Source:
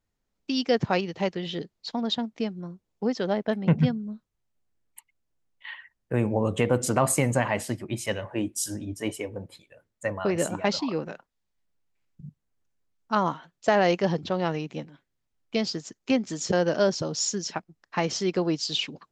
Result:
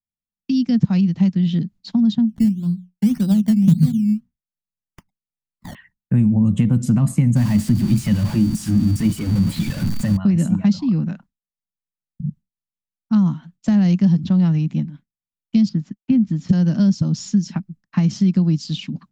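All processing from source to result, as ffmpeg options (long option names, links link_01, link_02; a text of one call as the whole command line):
ffmpeg -i in.wav -filter_complex "[0:a]asettb=1/sr,asplit=3[link_01][link_02][link_03];[link_01]atrim=end=2.294[link_04];[link_02]atrim=start=2.29:end=5.75,asetpts=PTS-STARTPTS,afade=type=in:duration=0.004:curve=qsin,afade=type=out:start_time=3.456:duration=0.004:curve=qsin,bandreject=frequency=60:width_type=h:width=6,bandreject=frequency=120:width_type=h:width=6,bandreject=frequency=180:width_type=h:width=6,bandreject=frequency=240:width_type=h:width=6,acrusher=samples=14:mix=1:aa=0.000001:lfo=1:lforange=8.4:lforate=1.8[link_05];[link_03]atrim=start=5.746[link_06];[link_04][link_05]acrossfade=duration=0.004:curve1=hsin:curve2=qsin[link_07];[link_07][link_06]acrossfade=duration=0.004:curve1=qsin:curve2=hsin,asettb=1/sr,asplit=3[link_08][link_09][link_10];[link_08]atrim=end=7.364[link_11];[link_09]atrim=start=7.36:end=10.17,asetpts=PTS-STARTPTS,afade=type=in:duration=0.004:curve=qsin,afade=type=out:start_time=2.806:duration=0.004:curve=qsin,aeval=exprs='val(0)+0.5*0.0531*sgn(val(0))':channel_layout=same,aeval=exprs='val(0)+0.00891*sin(2*PI*4600*n/s)':channel_layout=same[link_12];[link_10]atrim=start=10.166[link_13];[link_11][link_12]acrossfade=duration=0.004:curve1=hsin:curve2=qsin[link_14];[link_14][link_13]acrossfade=duration=0.004:curve1=qsin:curve2=hsin,asettb=1/sr,asplit=3[link_15][link_16][link_17];[link_15]atrim=end=15.694[link_18];[link_16]atrim=start=15.69:end=16.49,asetpts=PTS-STARTPTS,afade=type=in:duration=0.004:curve=qsin,afade=type=out:start_time=0.796:duration=0.004:curve=qsin,agate=range=-33dB:threshold=-45dB:ratio=3:release=100:detection=peak,lowpass=2500[link_19];[link_17]atrim=start=16.486[link_20];[link_18][link_19]acrossfade=duration=0.004:curve1=hsin:curve2=qsin[link_21];[link_21][link_20]acrossfade=duration=0.004:curve1=qsin:curve2=hsin,agate=range=-33dB:threshold=-49dB:ratio=3:detection=peak,lowshelf=frequency=300:width_type=q:width=3:gain=13,acrossover=split=310|3900[link_22][link_23][link_24];[link_22]acompressor=threshold=-13dB:ratio=4[link_25];[link_23]acompressor=threshold=-33dB:ratio=4[link_26];[link_24]acompressor=threshold=-36dB:ratio=4[link_27];[link_25][link_26][link_27]amix=inputs=3:normalize=0" out.wav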